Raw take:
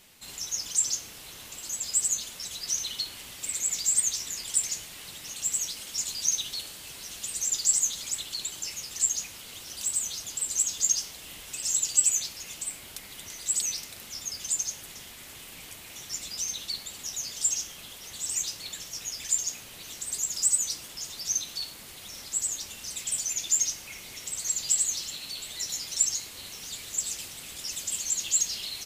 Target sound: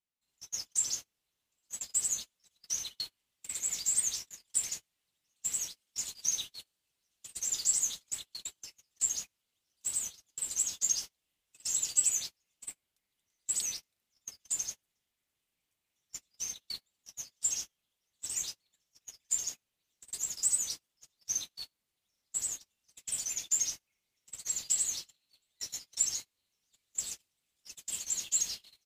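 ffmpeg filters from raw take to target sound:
-af "agate=range=-35dB:threshold=-32dB:ratio=16:detection=peak,volume=-5dB"

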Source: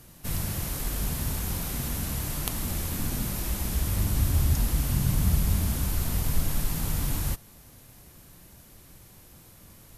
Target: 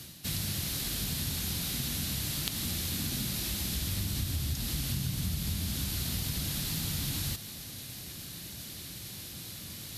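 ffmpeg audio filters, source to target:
-filter_complex "[0:a]highpass=83,acrossover=split=660|6100[a][b][c];[c]asoftclip=type=tanh:threshold=-24dB[d];[a][b][d]amix=inputs=3:normalize=0,areverse,acompressor=mode=upward:threshold=-34dB:ratio=2.5,areverse,equalizer=f=500:t=o:w=1:g=-5,equalizer=f=1k:t=o:w=1:g=-7,equalizer=f=4k:t=o:w=1:g=10,acompressor=threshold=-29dB:ratio=6"

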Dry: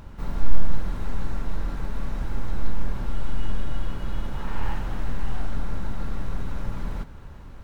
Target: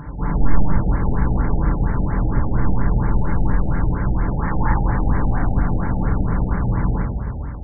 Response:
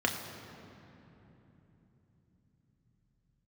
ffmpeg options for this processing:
-filter_complex "[1:a]atrim=start_sample=2205,afade=t=out:st=0.36:d=0.01,atrim=end_sample=16317,asetrate=26460,aresample=44100[a];[0:a][a]afir=irnorm=-1:irlink=0,afftfilt=real='re*lt(b*sr/1024,830*pow(2400/830,0.5+0.5*sin(2*PI*4.3*pts/sr)))':imag='im*lt(b*sr/1024,830*pow(2400/830,0.5+0.5*sin(2*PI*4.3*pts/sr)))':win_size=1024:overlap=0.75"

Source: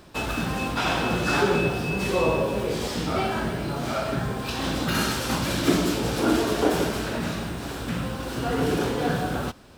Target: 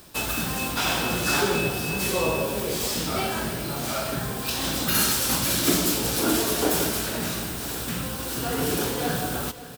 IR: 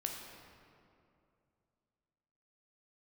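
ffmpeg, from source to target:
-filter_complex "[0:a]aemphasis=mode=production:type=75fm,asplit=2[a][b];[b]aecho=0:1:555|1110|1665|2220|2775:0.15|0.0868|0.0503|0.0292|0.0169[c];[a][c]amix=inputs=2:normalize=0,volume=-2dB"

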